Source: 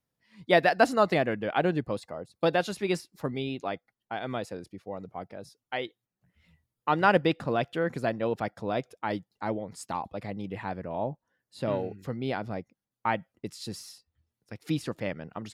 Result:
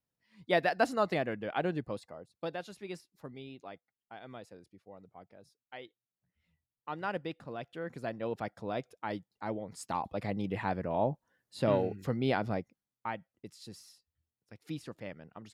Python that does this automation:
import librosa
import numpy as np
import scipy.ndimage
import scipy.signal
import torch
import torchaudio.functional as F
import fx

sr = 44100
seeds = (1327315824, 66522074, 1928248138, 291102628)

y = fx.gain(x, sr, db=fx.line((1.94, -6.5), (2.57, -14.0), (7.55, -14.0), (8.37, -6.0), (9.44, -6.0), (10.29, 1.5), (12.53, 1.5), (13.14, -10.5)))